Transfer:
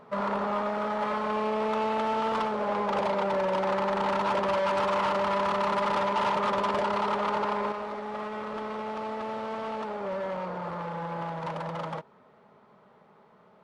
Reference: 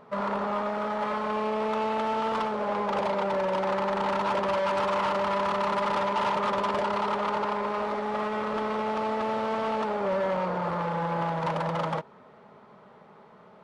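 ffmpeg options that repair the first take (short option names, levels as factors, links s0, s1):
-af "asetnsamples=n=441:p=0,asendcmd='7.72 volume volume 5.5dB',volume=1"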